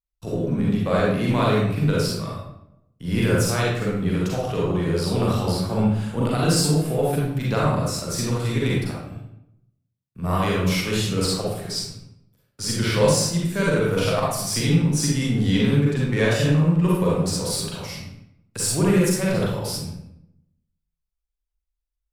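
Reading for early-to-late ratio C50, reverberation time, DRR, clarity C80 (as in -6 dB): -2.0 dB, 0.80 s, -5.5 dB, 3.0 dB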